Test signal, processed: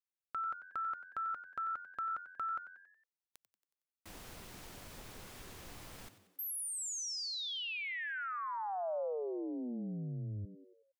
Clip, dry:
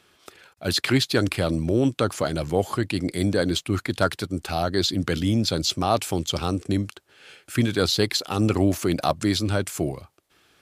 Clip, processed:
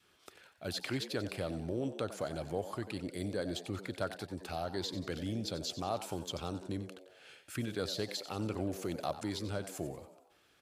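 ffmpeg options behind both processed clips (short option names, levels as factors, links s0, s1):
-filter_complex "[0:a]acompressor=threshold=0.0126:ratio=1.5,asplit=2[s0][s1];[s1]asplit=5[s2][s3][s4][s5][s6];[s2]adelay=92,afreqshift=89,volume=0.224[s7];[s3]adelay=184,afreqshift=178,volume=0.116[s8];[s4]adelay=276,afreqshift=267,volume=0.0603[s9];[s5]adelay=368,afreqshift=356,volume=0.0316[s10];[s6]adelay=460,afreqshift=445,volume=0.0164[s11];[s7][s8][s9][s10][s11]amix=inputs=5:normalize=0[s12];[s0][s12]amix=inputs=2:normalize=0,adynamicequalizer=threshold=0.00631:dfrequency=580:dqfactor=1.6:tfrequency=580:tqfactor=1.6:attack=5:release=100:ratio=0.375:range=2:mode=boostabove:tftype=bell,volume=0.355"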